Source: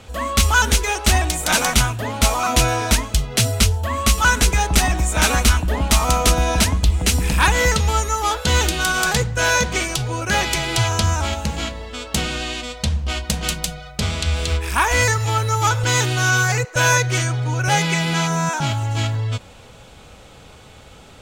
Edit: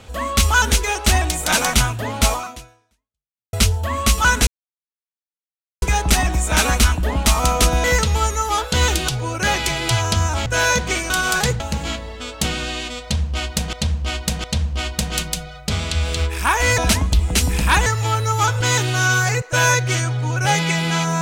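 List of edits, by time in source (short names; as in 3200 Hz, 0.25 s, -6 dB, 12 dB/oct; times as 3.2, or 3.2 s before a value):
2.33–3.53 fade out exponential
4.47 insert silence 1.35 s
6.49–7.57 move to 15.09
8.81–9.31 swap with 9.95–11.33
12.75–13.46 loop, 3 plays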